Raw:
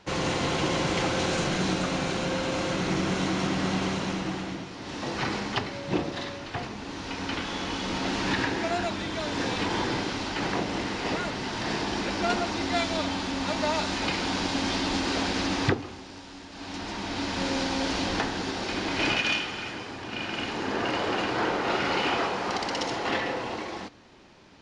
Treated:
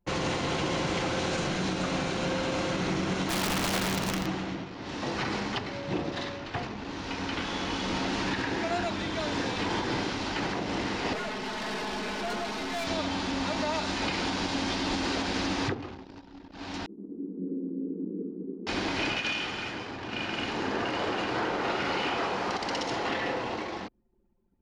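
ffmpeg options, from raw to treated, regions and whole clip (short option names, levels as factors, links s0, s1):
-filter_complex "[0:a]asettb=1/sr,asplit=3[s0][s1][s2];[s0]atrim=end=3.294[s3];[s1]atrim=start=3.29:end=4.26,asetpts=PTS-STARTPTS,afade=t=in:d=0.004:c=qsin,afade=t=out:st=0.966:d=0.004:c=qsin,asubboost=boost=2:cutoff=240,acrusher=bits=8:dc=4:mix=0:aa=0.000001,aeval=exprs='(mod(12.6*val(0)+1,2)-1)/12.6':c=same[s4];[s2]atrim=start=4.256[s5];[s3][s4]acrossfade=d=0.004:c1=hsin:c2=qsin[s6];[s6][s5]acrossfade=d=0.004:c1=qsin:c2=hsin,asettb=1/sr,asplit=3[s7][s8][s9];[s7]atrim=end=11.134[s10];[s8]atrim=start=11.13:end=12.87,asetpts=PTS-STARTPTS,afade=t=in:d=0.004:c=qsin,afade=t=out:st=1.736:d=0.004:c=qsin,bass=f=250:g=-6,treble=f=4000:g=-3,aecho=1:1:4.7:0.99,atrim=end_sample=76734,aeval=exprs='(tanh(31.6*val(0)+0.25)-tanh(0.25))/31.6':c=same[s11];[s9]atrim=start=12.866[s12];[s10][s11]acrossfade=d=0.004:c1=hsin:c2=qsin[s13];[s13][s12]acrossfade=d=0.004:c1=qsin:c2=hsin,asettb=1/sr,asplit=3[s14][s15][s16];[s14]atrim=end=16.864[s17];[s15]atrim=start=16.86:end=18.67,asetpts=PTS-STARTPTS,afade=t=in:d=0.004:c=qsin,afade=t=out:st=1.806:d=0.004:c=qsin,aeval=exprs='sgn(val(0))*max(abs(val(0))-0.01,0)':c=same,asuperpass=centerf=280:order=20:qfactor=0.9[s18];[s16]atrim=start=18.666[s19];[s17][s18]acrossfade=d=0.004:c1=hsin:c2=qsin[s20];[s20][s19]acrossfade=d=0.004:c1=qsin:c2=hsin,anlmdn=0.251,highshelf=f=8200:g=-4,alimiter=limit=0.1:level=0:latency=1:release=120"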